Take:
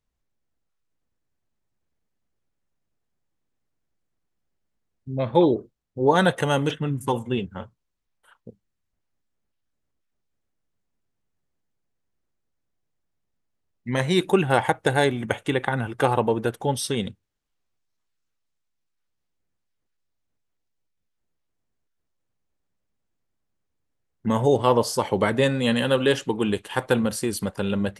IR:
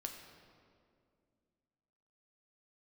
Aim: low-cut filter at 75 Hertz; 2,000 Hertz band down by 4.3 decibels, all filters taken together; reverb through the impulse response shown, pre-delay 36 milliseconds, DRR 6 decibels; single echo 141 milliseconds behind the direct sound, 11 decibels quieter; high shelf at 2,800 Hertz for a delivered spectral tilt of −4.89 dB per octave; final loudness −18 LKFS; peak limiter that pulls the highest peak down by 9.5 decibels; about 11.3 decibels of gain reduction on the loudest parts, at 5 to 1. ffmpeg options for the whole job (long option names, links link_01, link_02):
-filter_complex "[0:a]highpass=75,equalizer=frequency=2000:width_type=o:gain=-9,highshelf=frequency=2800:gain=7,acompressor=threshold=-26dB:ratio=5,alimiter=limit=-19.5dB:level=0:latency=1,aecho=1:1:141:0.282,asplit=2[link_01][link_02];[1:a]atrim=start_sample=2205,adelay=36[link_03];[link_02][link_03]afir=irnorm=-1:irlink=0,volume=-4dB[link_04];[link_01][link_04]amix=inputs=2:normalize=0,volume=13dB"